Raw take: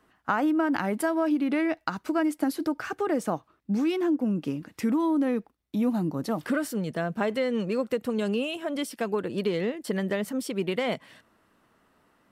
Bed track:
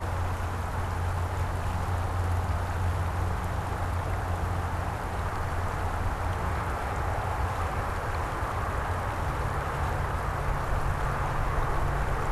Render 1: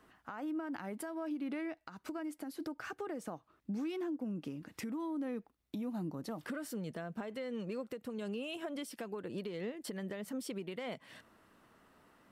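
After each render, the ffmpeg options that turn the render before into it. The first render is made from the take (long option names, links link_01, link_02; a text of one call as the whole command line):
ffmpeg -i in.wav -af "acompressor=threshold=-39dB:ratio=3,alimiter=level_in=7.5dB:limit=-24dB:level=0:latency=1:release=271,volume=-7.5dB" out.wav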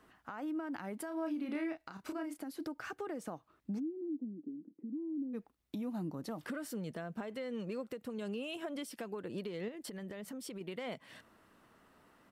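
ffmpeg -i in.wav -filter_complex "[0:a]asplit=3[link_01][link_02][link_03];[link_01]afade=type=out:start_time=1.1:duration=0.02[link_04];[link_02]asplit=2[link_05][link_06];[link_06]adelay=31,volume=-5dB[link_07];[link_05][link_07]amix=inputs=2:normalize=0,afade=type=in:start_time=1.1:duration=0.02,afade=type=out:start_time=2.36:duration=0.02[link_08];[link_03]afade=type=in:start_time=2.36:duration=0.02[link_09];[link_04][link_08][link_09]amix=inputs=3:normalize=0,asplit=3[link_10][link_11][link_12];[link_10]afade=type=out:start_time=3.78:duration=0.02[link_13];[link_11]asuperpass=centerf=280:order=4:qfactor=2.1,afade=type=in:start_time=3.78:duration=0.02,afade=type=out:start_time=5.33:duration=0.02[link_14];[link_12]afade=type=in:start_time=5.33:duration=0.02[link_15];[link_13][link_14][link_15]amix=inputs=3:normalize=0,asettb=1/sr,asplit=3[link_16][link_17][link_18];[link_16]atrim=end=9.684[link_19];[link_17]atrim=start=9.68:end=10.61,asetpts=PTS-STARTPTS,afade=type=in:duration=0.004:curve=qsin,afade=type=out:start_time=0.926:duration=0.004:curve=qsin,acompressor=threshold=-41dB:ratio=4:attack=3.2:release=140:knee=1:detection=peak[link_20];[link_18]atrim=start=10.606[link_21];[link_19][link_20]acrossfade=duration=0.004:curve1=hsin:curve2=qsin[link_22];[link_22][link_21]acrossfade=duration=0.004:curve1=qsin:curve2=hsin" out.wav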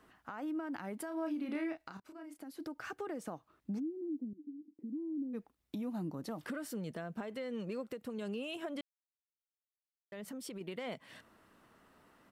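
ffmpeg -i in.wav -filter_complex "[0:a]asettb=1/sr,asplit=3[link_01][link_02][link_03];[link_01]atrim=end=4.334[link_04];[link_02]atrim=start=4.33:end=4.79,asetpts=PTS-STARTPTS,afade=type=in:duration=0.004:curve=qsin,afade=type=out:start_time=0.456:duration=0.004:curve=qsin,asplit=3[link_05][link_06][link_07];[link_05]bandpass=frequency=300:width_type=q:width=8,volume=0dB[link_08];[link_06]bandpass=frequency=870:width_type=q:width=8,volume=-6dB[link_09];[link_07]bandpass=frequency=2240:width_type=q:width=8,volume=-9dB[link_10];[link_08][link_09][link_10]amix=inputs=3:normalize=0[link_11];[link_03]atrim=start=4.786[link_12];[link_04][link_11]acrossfade=duration=0.004:curve1=hsin:curve2=qsin[link_13];[link_13][link_12]acrossfade=duration=0.004:curve1=qsin:curve2=hsin,asplit=4[link_14][link_15][link_16][link_17];[link_14]atrim=end=2,asetpts=PTS-STARTPTS,afade=type=out:start_time=1.996:duration=0.004:curve=hsin:silence=0.133352[link_18];[link_15]atrim=start=2:end=8.81,asetpts=PTS-STARTPTS,afade=type=in:duration=0.9:silence=0.133352,afade=type=out:start_time=6.806:duration=0.004:curve=hsin[link_19];[link_16]atrim=start=8.81:end=10.12,asetpts=PTS-STARTPTS,volume=0[link_20];[link_17]atrim=start=10.12,asetpts=PTS-STARTPTS,afade=type=in:duration=0.004:curve=hsin[link_21];[link_18][link_19][link_20][link_21]concat=n=4:v=0:a=1" out.wav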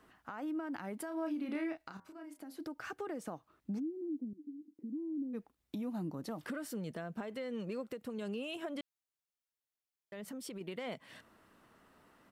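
ffmpeg -i in.wav -filter_complex "[0:a]asplit=3[link_01][link_02][link_03];[link_01]afade=type=out:start_time=1.92:duration=0.02[link_04];[link_02]bandreject=frequency=87.13:width_type=h:width=4,bandreject=frequency=174.26:width_type=h:width=4,bandreject=frequency=261.39:width_type=h:width=4,bandreject=frequency=348.52:width_type=h:width=4,bandreject=frequency=435.65:width_type=h:width=4,bandreject=frequency=522.78:width_type=h:width=4,bandreject=frequency=609.91:width_type=h:width=4,bandreject=frequency=697.04:width_type=h:width=4,bandreject=frequency=784.17:width_type=h:width=4,bandreject=frequency=871.3:width_type=h:width=4,bandreject=frequency=958.43:width_type=h:width=4,bandreject=frequency=1045.56:width_type=h:width=4,bandreject=frequency=1132.69:width_type=h:width=4,bandreject=frequency=1219.82:width_type=h:width=4,bandreject=frequency=1306.95:width_type=h:width=4,bandreject=frequency=1394.08:width_type=h:width=4,bandreject=frequency=1481.21:width_type=h:width=4,bandreject=frequency=1568.34:width_type=h:width=4,bandreject=frequency=1655.47:width_type=h:width=4,bandreject=frequency=1742.6:width_type=h:width=4,bandreject=frequency=1829.73:width_type=h:width=4,bandreject=frequency=1916.86:width_type=h:width=4,bandreject=frequency=2003.99:width_type=h:width=4,bandreject=frequency=2091.12:width_type=h:width=4,afade=type=in:start_time=1.92:duration=0.02,afade=type=out:start_time=2.55:duration=0.02[link_05];[link_03]afade=type=in:start_time=2.55:duration=0.02[link_06];[link_04][link_05][link_06]amix=inputs=3:normalize=0" out.wav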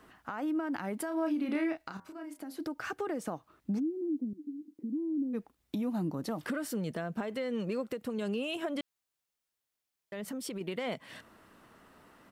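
ffmpeg -i in.wav -af "volume=6dB" out.wav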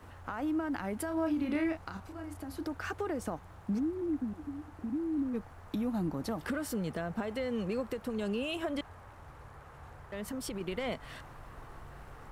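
ffmpeg -i in.wav -i bed.wav -filter_complex "[1:a]volume=-21.5dB[link_01];[0:a][link_01]amix=inputs=2:normalize=0" out.wav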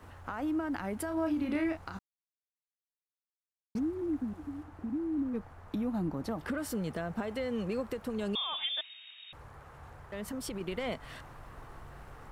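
ffmpeg -i in.wav -filter_complex "[0:a]asettb=1/sr,asplit=3[link_01][link_02][link_03];[link_01]atrim=end=4.634[link_04];[link_02]atrim=start=4.63:end=6.58,asetpts=PTS-STARTPTS,afade=type=in:duration=0.004:curve=qsin,afade=type=out:start_time=1.946:duration=0.004:curve=qsin,highshelf=frequency=3600:gain=-6[link_05];[link_03]atrim=start=6.576[link_06];[link_04][link_05]acrossfade=duration=0.004:curve1=hsin:curve2=qsin[link_07];[link_07][link_06]acrossfade=duration=0.004:curve1=qsin:curve2=hsin,asettb=1/sr,asplit=3[link_08][link_09][link_10];[link_08]atrim=end=8.354[link_11];[link_09]atrim=start=8.35:end=9.33,asetpts=PTS-STARTPTS,afade=type=in:duration=0.004:curve=qsin,afade=type=out:start_time=0.976:duration=0.004:curve=qsin,lowpass=frequency=3200:width_type=q:width=0.5098,lowpass=frequency=3200:width_type=q:width=0.6013,lowpass=frequency=3200:width_type=q:width=0.9,lowpass=frequency=3200:width_type=q:width=2.563,afreqshift=-3800[link_12];[link_10]atrim=start=9.326[link_13];[link_11][link_12]acrossfade=duration=0.004:curve1=hsin:curve2=qsin[link_14];[link_14][link_13]acrossfade=duration=0.004:curve1=qsin:curve2=hsin,asplit=3[link_15][link_16][link_17];[link_15]atrim=end=1.99,asetpts=PTS-STARTPTS,afade=type=out:start_time=1.986:duration=0.004:curve=hsin[link_18];[link_16]atrim=start=1.99:end=3.75,asetpts=PTS-STARTPTS,volume=0[link_19];[link_17]atrim=start=3.75,asetpts=PTS-STARTPTS,afade=type=in:duration=0.004:curve=hsin[link_20];[link_18][link_19][link_20]concat=n=3:v=0:a=1" out.wav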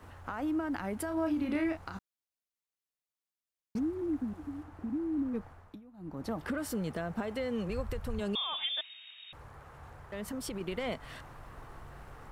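ffmpeg -i in.wav -filter_complex "[0:a]asplit=3[link_01][link_02][link_03];[link_01]afade=type=out:start_time=7.68:duration=0.02[link_04];[link_02]asubboost=boost=12:cutoff=76,afade=type=in:start_time=7.68:duration=0.02,afade=type=out:start_time=8.19:duration=0.02[link_05];[link_03]afade=type=in:start_time=8.19:duration=0.02[link_06];[link_04][link_05][link_06]amix=inputs=3:normalize=0,asplit=3[link_07][link_08][link_09];[link_07]atrim=end=5.81,asetpts=PTS-STARTPTS,afade=type=out:start_time=5.47:duration=0.34:silence=0.0794328[link_10];[link_08]atrim=start=5.81:end=5.97,asetpts=PTS-STARTPTS,volume=-22dB[link_11];[link_09]atrim=start=5.97,asetpts=PTS-STARTPTS,afade=type=in:duration=0.34:silence=0.0794328[link_12];[link_10][link_11][link_12]concat=n=3:v=0:a=1" out.wav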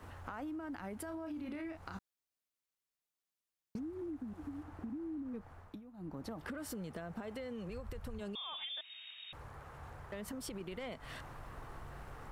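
ffmpeg -i in.wav -af "alimiter=level_in=3.5dB:limit=-24dB:level=0:latency=1:release=54,volume=-3.5dB,acompressor=threshold=-41dB:ratio=5" out.wav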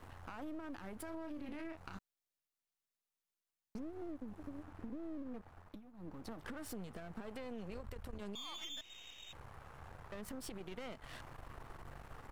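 ffmpeg -i in.wav -af "aeval=exprs='if(lt(val(0),0),0.251*val(0),val(0))':channel_layout=same" out.wav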